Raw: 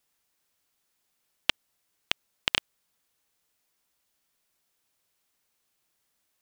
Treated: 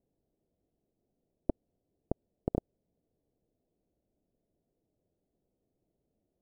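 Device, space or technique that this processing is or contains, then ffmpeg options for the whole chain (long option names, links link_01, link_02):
under water: -af "lowpass=frequency=430:width=0.5412,lowpass=frequency=430:width=1.3066,equalizer=frequency=680:width_type=o:width=0.57:gain=8.5,volume=11dB"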